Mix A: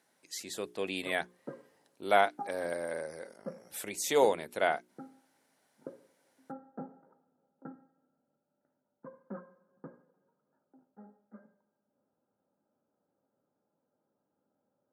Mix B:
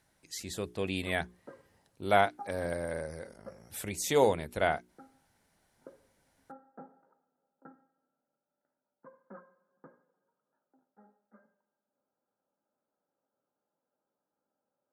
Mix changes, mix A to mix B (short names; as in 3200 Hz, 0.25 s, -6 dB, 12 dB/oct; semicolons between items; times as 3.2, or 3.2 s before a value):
speech: remove HPF 280 Hz 12 dB/oct; background: add low shelf 500 Hz -11.5 dB